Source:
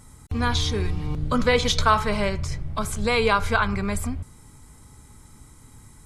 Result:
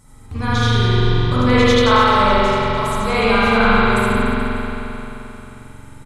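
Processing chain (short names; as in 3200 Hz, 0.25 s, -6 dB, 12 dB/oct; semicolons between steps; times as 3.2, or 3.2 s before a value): 1.5–2.16 steep high-pass 380 Hz 48 dB/oct; reverse bouncing-ball echo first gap 80 ms, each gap 1.2×, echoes 5; spring tank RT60 3.5 s, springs 44 ms, chirp 25 ms, DRR -9.5 dB; gain -3 dB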